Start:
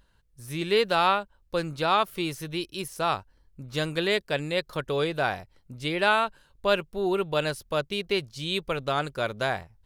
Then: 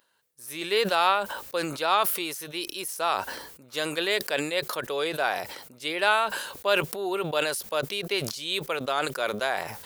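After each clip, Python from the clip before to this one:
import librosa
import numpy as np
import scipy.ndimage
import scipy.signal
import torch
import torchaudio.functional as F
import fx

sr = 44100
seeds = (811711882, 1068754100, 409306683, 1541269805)

y = scipy.signal.sosfilt(scipy.signal.butter(2, 420.0, 'highpass', fs=sr, output='sos'), x)
y = fx.high_shelf(y, sr, hz=10000.0, db=10.5)
y = fx.sustainer(y, sr, db_per_s=57.0)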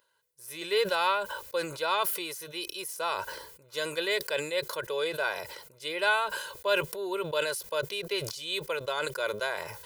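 y = x + 0.83 * np.pad(x, (int(2.0 * sr / 1000.0), 0))[:len(x)]
y = F.gain(torch.from_numpy(y), -6.0).numpy()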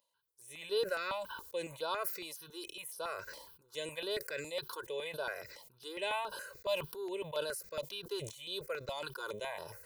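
y = fx.phaser_held(x, sr, hz=7.2, low_hz=400.0, high_hz=7300.0)
y = F.gain(torch.from_numpy(y), -5.5).numpy()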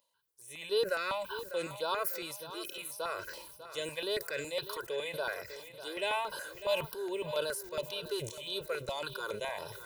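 y = fx.echo_feedback(x, sr, ms=598, feedback_pct=44, wet_db=-13.0)
y = F.gain(torch.from_numpy(y), 3.0).numpy()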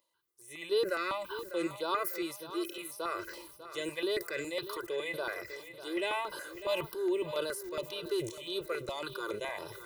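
y = fx.small_body(x, sr, hz=(340.0, 1200.0, 2000.0), ring_ms=60, db=14)
y = F.gain(torch.from_numpy(y), -2.0).numpy()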